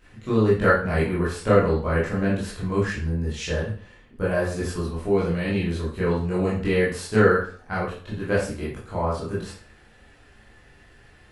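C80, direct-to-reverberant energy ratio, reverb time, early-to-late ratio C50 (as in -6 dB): 8.5 dB, -8.5 dB, 0.45 s, 3.5 dB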